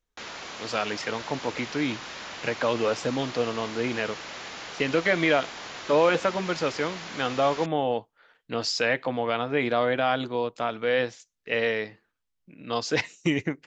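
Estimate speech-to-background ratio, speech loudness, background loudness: 10.5 dB, -27.0 LUFS, -37.5 LUFS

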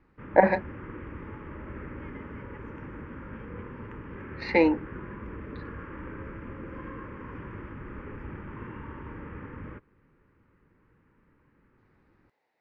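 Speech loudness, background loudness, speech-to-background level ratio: -24.5 LUFS, -41.5 LUFS, 17.0 dB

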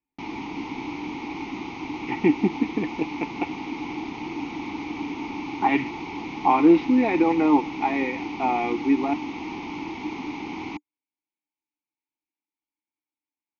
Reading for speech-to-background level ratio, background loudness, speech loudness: 10.0 dB, -33.0 LUFS, -23.0 LUFS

